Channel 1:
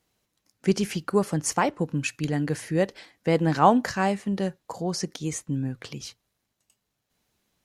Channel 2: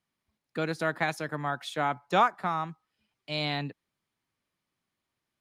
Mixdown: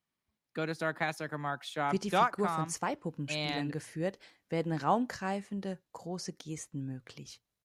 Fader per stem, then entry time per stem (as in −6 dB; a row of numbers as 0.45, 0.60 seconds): −10.5, −4.0 decibels; 1.25, 0.00 seconds